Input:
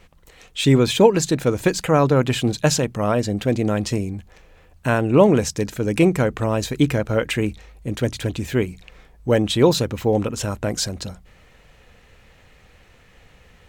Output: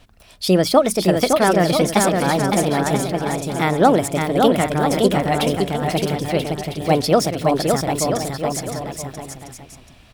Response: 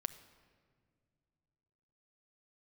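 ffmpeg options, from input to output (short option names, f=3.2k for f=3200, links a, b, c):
-af "aecho=1:1:760|1330|1758|2078|2319:0.631|0.398|0.251|0.158|0.1,asetrate=59535,aresample=44100"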